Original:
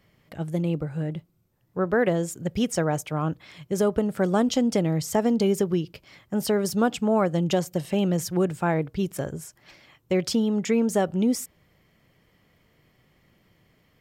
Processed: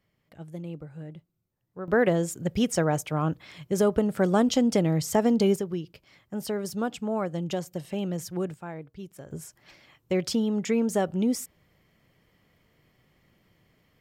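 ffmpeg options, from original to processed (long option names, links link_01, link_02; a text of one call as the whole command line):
ffmpeg -i in.wav -af "asetnsamples=nb_out_samples=441:pad=0,asendcmd='1.88 volume volume 0dB;5.56 volume volume -7dB;8.54 volume volume -14.5dB;9.31 volume volume -2.5dB',volume=-11.5dB" out.wav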